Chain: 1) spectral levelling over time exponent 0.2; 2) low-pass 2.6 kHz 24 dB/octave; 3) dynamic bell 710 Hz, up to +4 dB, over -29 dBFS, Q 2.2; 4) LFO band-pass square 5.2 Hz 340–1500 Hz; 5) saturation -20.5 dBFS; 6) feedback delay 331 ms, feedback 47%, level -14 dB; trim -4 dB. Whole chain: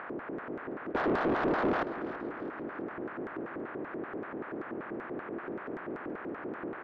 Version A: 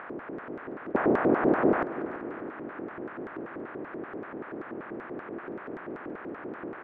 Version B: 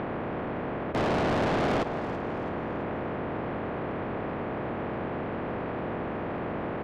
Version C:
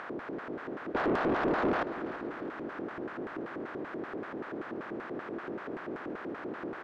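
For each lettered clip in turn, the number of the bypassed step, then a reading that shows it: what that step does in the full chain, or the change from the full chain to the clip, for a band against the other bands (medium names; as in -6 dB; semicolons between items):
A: 5, distortion -8 dB; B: 4, 125 Hz band +8.5 dB; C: 2, 4 kHz band +2.0 dB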